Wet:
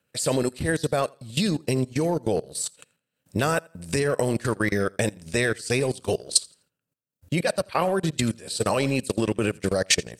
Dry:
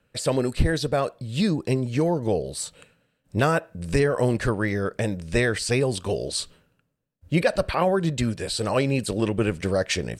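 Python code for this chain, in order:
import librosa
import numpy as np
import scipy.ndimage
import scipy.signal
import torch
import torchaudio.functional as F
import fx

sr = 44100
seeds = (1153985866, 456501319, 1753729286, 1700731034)

p1 = fx.level_steps(x, sr, step_db=13)
p2 = scipy.signal.sosfilt(scipy.signal.butter(2, 100.0, 'highpass', fs=sr, output='sos'), p1)
p3 = p2 + fx.echo_feedback(p2, sr, ms=84, feedback_pct=27, wet_db=-16, dry=0)
p4 = fx.transient(p3, sr, attack_db=2, sustain_db=-11)
p5 = fx.high_shelf(p4, sr, hz=4800.0, db=12.0)
y = p5 * librosa.db_to_amplitude(3.0)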